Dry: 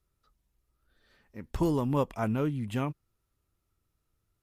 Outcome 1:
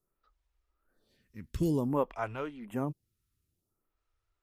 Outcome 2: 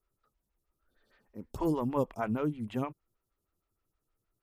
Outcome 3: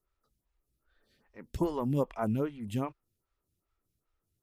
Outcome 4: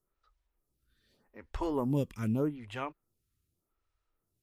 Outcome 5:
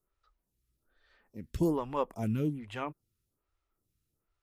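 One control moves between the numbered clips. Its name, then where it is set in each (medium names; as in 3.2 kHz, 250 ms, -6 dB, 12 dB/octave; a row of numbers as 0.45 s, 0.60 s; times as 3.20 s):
lamp-driven phase shifter, rate: 0.54 Hz, 6.4 Hz, 2.5 Hz, 0.83 Hz, 1.2 Hz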